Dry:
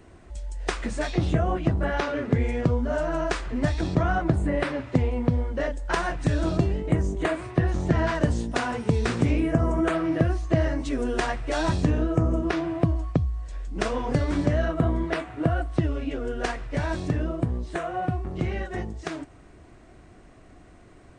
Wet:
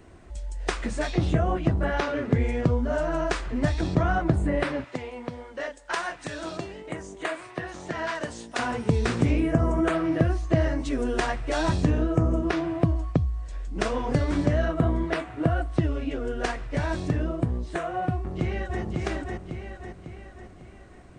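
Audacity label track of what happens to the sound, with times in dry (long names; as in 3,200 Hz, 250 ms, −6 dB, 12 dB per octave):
4.840000	8.590000	high-pass filter 920 Hz 6 dB per octave
18.140000	18.820000	delay throw 550 ms, feedback 50%, level −2.5 dB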